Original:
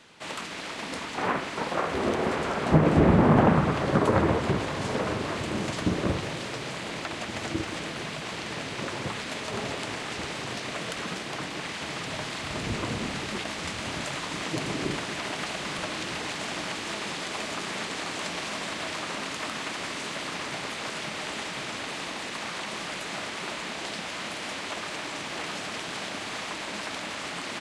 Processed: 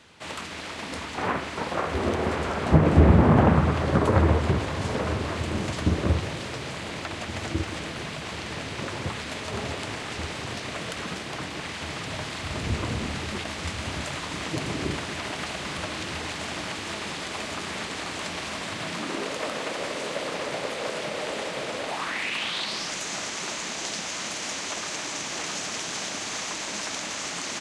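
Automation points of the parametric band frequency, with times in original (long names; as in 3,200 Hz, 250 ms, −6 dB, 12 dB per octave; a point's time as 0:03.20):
parametric band +12.5 dB 0.72 octaves
0:18.63 78 Hz
0:19.30 520 Hz
0:21.84 520 Hz
0:22.16 2,000 Hz
0:22.95 6,400 Hz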